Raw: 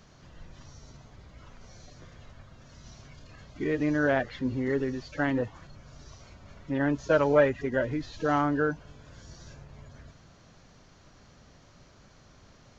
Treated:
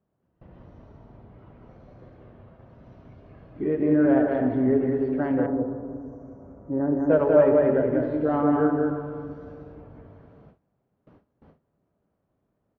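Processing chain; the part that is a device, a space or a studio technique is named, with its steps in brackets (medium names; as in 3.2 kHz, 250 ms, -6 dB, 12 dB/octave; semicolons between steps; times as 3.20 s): stadium PA (high-pass 240 Hz 6 dB/octave; peaking EQ 2.9 kHz +6 dB 0.99 oct; loudspeakers at several distances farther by 66 m -3 dB, 90 m -11 dB; reverberation RT60 2.6 s, pre-delay 3 ms, DRR 5.5 dB); Bessel low-pass 520 Hz, order 2; gate with hold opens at -48 dBFS; 5.46–7.10 s: FFT filter 600 Hz 0 dB, 1.4 kHz -4 dB, 3.6 kHz -30 dB, 6.3 kHz +8 dB; trim +6.5 dB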